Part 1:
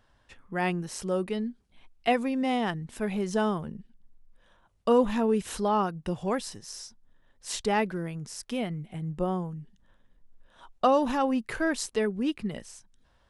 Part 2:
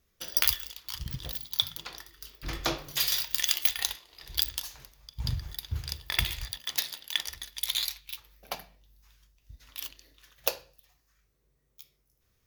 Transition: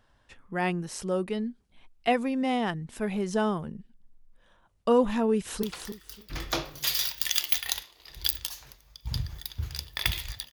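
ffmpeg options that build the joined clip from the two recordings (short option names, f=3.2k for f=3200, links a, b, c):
-filter_complex "[0:a]apad=whole_dur=10.52,atrim=end=10.52,atrim=end=5.632[a];[1:a]atrim=start=1.758:end=6.65[b];[a][b]acrossfade=d=0.004:c1=hsin:c2=hsin,asplit=2[c][d];[d]afade=t=in:st=5.31:d=0.01,afade=t=out:st=5.63:d=0.01,aecho=0:1:290|580|870:0.501187|0.100237|0.0200475[e];[c][e]amix=inputs=2:normalize=0"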